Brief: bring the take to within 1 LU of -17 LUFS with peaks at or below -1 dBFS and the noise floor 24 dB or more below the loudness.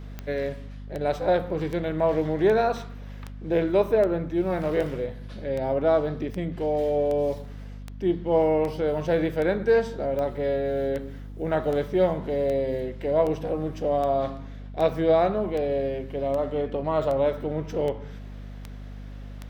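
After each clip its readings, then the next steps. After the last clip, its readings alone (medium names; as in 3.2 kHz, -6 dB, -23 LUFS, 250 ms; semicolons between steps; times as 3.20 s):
clicks found 26; hum 50 Hz; highest harmonic 250 Hz; hum level -36 dBFS; loudness -25.5 LUFS; peak level -10.0 dBFS; loudness target -17.0 LUFS
-> de-click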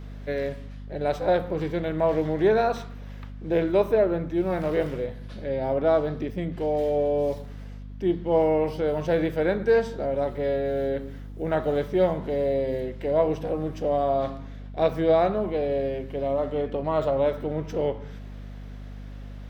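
clicks found 0; hum 50 Hz; highest harmonic 250 Hz; hum level -36 dBFS
-> hum notches 50/100/150/200/250 Hz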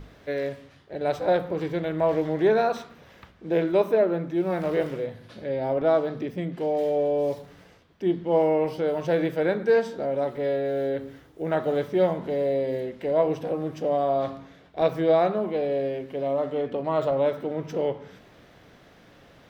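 hum not found; loudness -25.5 LUFS; peak level -10.0 dBFS; loudness target -17.0 LUFS
-> trim +8.5 dB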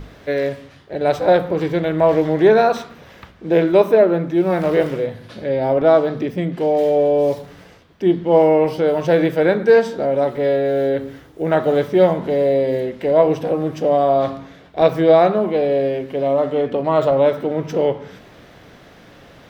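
loudness -17.0 LUFS; peak level -1.5 dBFS; noise floor -45 dBFS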